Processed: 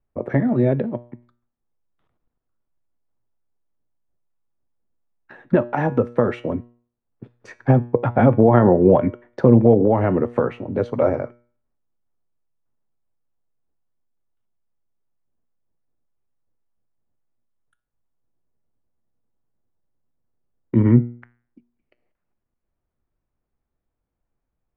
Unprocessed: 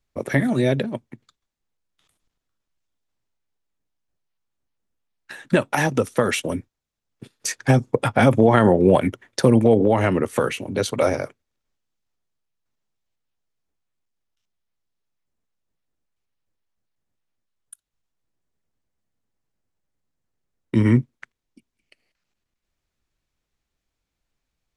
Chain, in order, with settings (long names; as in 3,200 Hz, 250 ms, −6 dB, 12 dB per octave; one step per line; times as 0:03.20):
low-pass filter 1,100 Hz 12 dB per octave
tuned comb filter 120 Hz, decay 0.46 s, harmonics all, mix 50%
level +6.5 dB